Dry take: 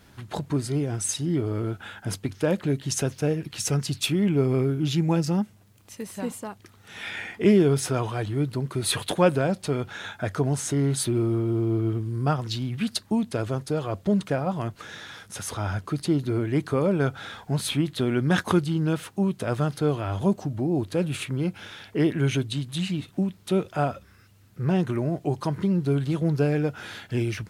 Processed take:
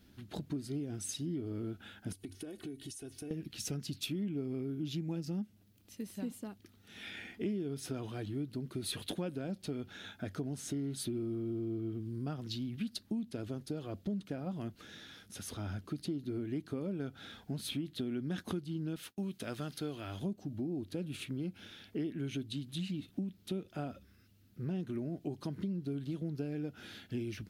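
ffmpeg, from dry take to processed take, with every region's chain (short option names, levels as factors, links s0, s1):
-filter_complex "[0:a]asettb=1/sr,asplit=3[s0][s1][s2];[s0]atrim=end=2.124[s3];[s1]atrim=start=2.12:end=3.31,asetpts=PTS-STARTPTS,afade=t=in:d=0.004:c=qsin,afade=t=out:st=1.186:d=0.004:c=qsin,equalizer=f=9500:t=o:w=0.52:g=14,aecho=1:1:2.7:0.78,atrim=end_sample=52479,acompressor=threshold=0.0251:ratio=20:attack=3.2:release=140:knee=1:detection=peak[s4];[s2]atrim=start=3.306[s5];[s3][s4]acrossfade=d=0.004:c1=hsin:c2=qsin[s6];[s6][s5]acrossfade=d=0.004:c1=qsin:c2=hsin,asettb=1/sr,asplit=3[s7][s8][s9];[s7]atrim=end=18.964[s10];[s8]atrim=start=18.96:end=20.22,asetpts=PTS-STARTPTS,afade=t=in:d=0.004:c=qsin,afade=t=out:st=1.256:d=0.004:c=qsin,agate=range=0.0224:threshold=0.00794:ratio=3:release=100:detection=peak,tiltshelf=f=720:g=-5.5[s11];[s9]atrim=start=20.216[s12];[s10][s11]acrossfade=d=0.004:c1=hsin:c2=qsin[s13];[s13][s12]acrossfade=d=0.004:c1=qsin:c2=hsin,equalizer=f=125:t=o:w=1:g=-7,equalizer=f=250:t=o:w=1:g=5,equalizer=f=500:t=o:w=1:g=-5,equalizer=f=1000:t=o:w=1:g=-12,equalizer=f=2000:t=o:w=1:g=-5,equalizer=f=8000:t=o:w=1:g=-8,acompressor=threshold=0.0355:ratio=5,volume=0.531"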